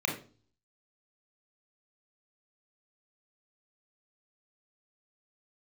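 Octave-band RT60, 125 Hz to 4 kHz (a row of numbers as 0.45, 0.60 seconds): 0.70, 0.55, 0.45, 0.35, 0.30, 0.35 seconds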